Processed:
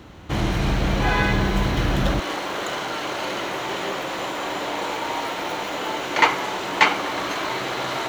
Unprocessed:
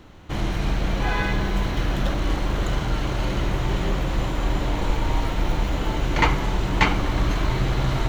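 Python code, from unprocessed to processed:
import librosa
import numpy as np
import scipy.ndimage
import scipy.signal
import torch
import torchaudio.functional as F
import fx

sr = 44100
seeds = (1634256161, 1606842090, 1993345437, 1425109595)

y = fx.highpass(x, sr, hz=fx.steps((0.0, 53.0), (2.2, 440.0)), slope=12)
y = y * 10.0 ** (4.5 / 20.0)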